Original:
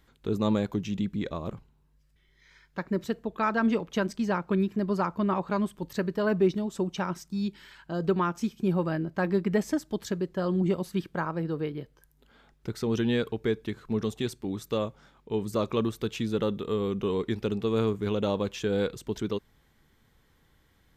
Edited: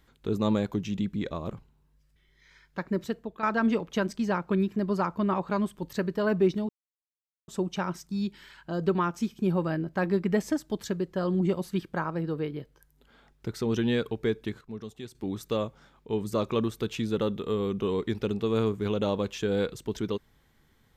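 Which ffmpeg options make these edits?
-filter_complex "[0:a]asplit=5[s0][s1][s2][s3][s4];[s0]atrim=end=3.43,asetpts=PTS-STARTPTS,afade=t=out:st=2.86:d=0.57:c=qsin:silence=0.375837[s5];[s1]atrim=start=3.43:end=6.69,asetpts=PTS-STARTPTS,afade=t=in:d=0.004:c=hsin:silence=0.375837,afade=t=out:st=3.256:d=0.004:c=hsin,apad=pad_dur=0.79[s6];[s2]atrim=start=6.69:end=13.822,asetpts=PTS-STARTPTS,afade=t=in:d=0.004:c=hsin[s7];[s3]atrim=start=13.818:end=14.362,asetpts=PTS-STARTPTS,volume=0.299[s8];[s4]atrim=start=14.358[s9];[s5][s6][s7]concat=n=3:v=0:a=1[s10];[s10][s8]acrossfade=d=0.004:c1=hsin:c2=hsin[s11];[s11][s9]acrossfade=d=0.004:c1=hsin:c2=hsin"

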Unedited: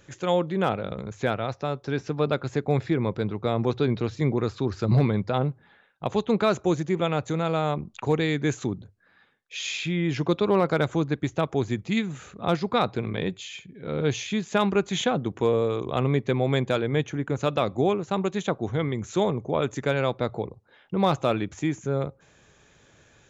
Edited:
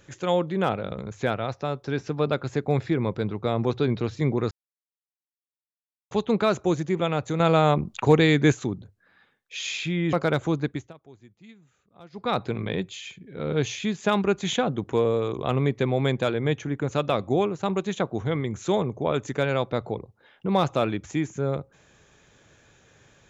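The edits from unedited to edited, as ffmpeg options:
-filter_complex "[0:a]asplit=8[s0][s1][s2][s3][s4][s5][s6][s7];[s0]atrim=end=4.51,asetpts=PTS-STARTPTS,afade=t=out:st=4.506:d=0.004:c=hsin[s8];[s1]atrim=start=4.51:end=6.11,asetpts=PTS-STARTPTS,volume=0[s9];[s2]atrim=start=6.11:end=7.402,asetpts=PTS-STARTPTS,afade=t=in:d=0.004:c=hsin[s10];[s3]atrim=start=7.398:end=8.522,asetpts=PTS-STARTPTS,volume=2[s11];[s4]atrim=start=8.518:end=10.132[s12];[s5]atrim=start=10.608:end=11.41,asetpts=PTS-STARTPTS,afade=t=out:st=0.512:d=0.29:silence=0.0630957[s13];[s6]atrim=start=11.41:end=12.58,asetpts=PTS-STARTPTS,volume=0.0631[s14];[s7]atrim=start=12.58,asetpts=PTS-STARTPTS,afade=t=in:d=0.29:silence=0.0630957[s15];[s8][s9][s10]concat=n=3:v=0:a=1[s16];[s16][s11]acrossfade=d=0.004:c1=hsin:c2=hsin[s17];[s17][s12]acrossfade=d=0.004:c1=hsin:c2=hsin[s18];[s13][s14][s15]concat=n=3:v=0:a=1[s19];[s18][s19]acrossfade=d=0.004:c1=hsin:c2=hsin"

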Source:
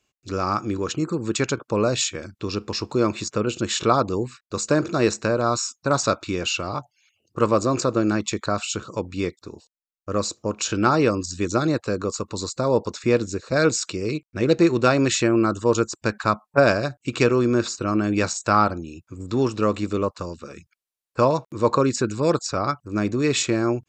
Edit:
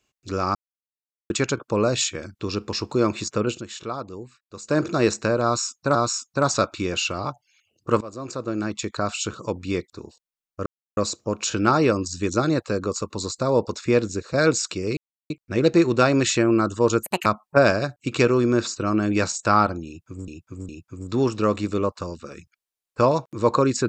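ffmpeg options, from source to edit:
-filter_complex "[0:a]asplit=13[s0][s1][s2][s3][s4][s5][s6][s7][s8][s9][s10][s11][s12];[s0]atrim=end=0.55,asetpts=PTS-STARTPTS,afade=t=out:st=0.546:d=0.004:c=hsin[s13];[s1]atrim=start=0.55:end=1.3,asetpts=PTS-STARTPTS,volume=0[s14];[s2]atrim=start=1.3:end=3.64,asetpts=PTS-STARTPTS,afade=t=in:d=0.004:c=hsin,afade=t=out:st=2.2:d=0.14:silence=0.251189[s15];[s3]atrim=start=3.64:end=4.64,asetpts=PTS-STARTPTS,volume=0.251[s16];[s4]atrim=start=4.64:end=5.952,asetpts=PTS-STARTPTS,afade=t=in:d=0.14:silence=0.251189[s17];[s5]atrim=start=5.438:end=7.5,asetpts=PTS-STARTPTS,afade=t=out:st=2.058:d=0.004:c=hsin:silence=0.0944061[s18];[s6]atrim=start=7.5:end=10.15,asetpts=PTS-STARTPTS,afade=t=in:d=1.2:silence=0.0944061,afade=t=out:st=2.646:d=0.004:c=hsin,apad=pad_dur=0.31[s19];[s7]atrim=start=10.15:end=14.15,asetpts=PTS-STARTPTS,afade=t=in:d=0.004:c=hsin,afade=t=out:st=3.996:d=0.004:c=hsin,apad=pad_dur=0.33[s20];[s8]atrim=start=14.15:end=15.884,asetpts=PTS-STARTPTS,afade=t=in:d=0.004:c=hsin[s21];[s9]atrim=start=15.88:end=16.27,asetpts=PTS-STARTPTS,asetrate=75411,aresample=44100[s22];[s10]atrim=start=16.266:end=19.292[s23];[s11]atrim=start=18.878:end=19.292[s24];[s12]atrim=start=18.878[s25];[s13][s14][s15][s16][s17]concat=n=5:v=0:a=1[s26];[s18][s19][s20][s21]concat=n=4:v=0:a=1[s27];[s26][s27]acrossfade=d=0.004:c1=hsin:c2=hsin[s28];[s28][s22]acrossfade=d=0.004:c1=hsin:c2=hsin[s29];[s29][s23]acrossfade=d=0.004:c1=hsin:c2=hsin[s30];[s30][s24]acrossfade=d=0.004:c1=hsin:c2=hsin[s31];[s31][s25]acrossfade=d=0.004:c1=hsin:c2=hsin"

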